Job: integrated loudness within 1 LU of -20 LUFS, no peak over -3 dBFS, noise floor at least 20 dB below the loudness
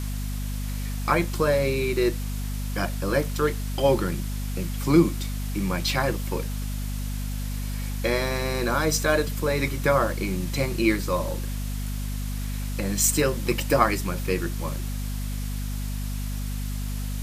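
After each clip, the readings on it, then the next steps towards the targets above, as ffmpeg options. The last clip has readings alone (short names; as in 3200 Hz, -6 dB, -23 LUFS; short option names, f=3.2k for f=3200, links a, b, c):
hum 50 Hz; harmonics up to 250 Hz; hum level -27 dBFS; noise floor -29 dBFS; noise floor target -46 dBFS; loudness -26.0 LUFS; peak -4.5 dBFS; loudness target -20.0 LUFS
-> -af "bandreject=f=50:t=h:w=6,bandreject=f=100:t=h:w=6,bandreject=f=150:t=h:w=6,bandreject=f=200:t=h:w=6,bandreject=f=250:t=h:w=6"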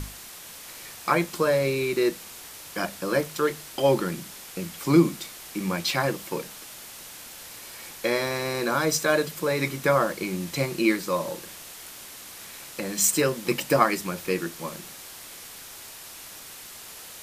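hum none; noise floor -43 dBFS; noise floor target -46 dBFS
-> -af "afftdn=nr=6:nf=-43"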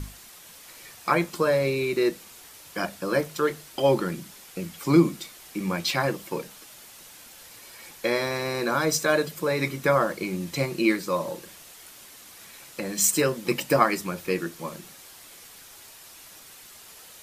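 noise floor -48 dBFS; loudness -25.5 LUFS; peak -5.5 dBFS; loudness target -20.0 LUFS
-> -af "volume=5.5dB,alimiter=limit=-3dB:level=0:latency=1"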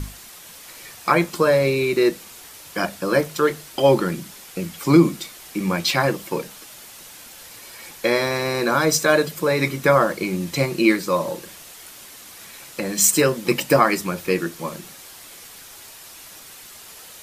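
loudness -20.5 LUFS; peak -3.0 dBFS; noise floor -42 dBFS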